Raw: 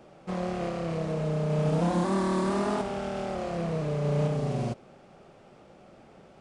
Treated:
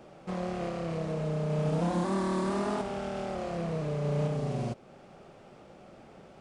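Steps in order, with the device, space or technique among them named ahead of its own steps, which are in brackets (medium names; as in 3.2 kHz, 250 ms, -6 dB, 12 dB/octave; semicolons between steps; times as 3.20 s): parallel compression (in parallel at -2 dB: compression, threshold -42 dBFS, peak gain reduction 18.5 dB); on the sum: trim -4 dB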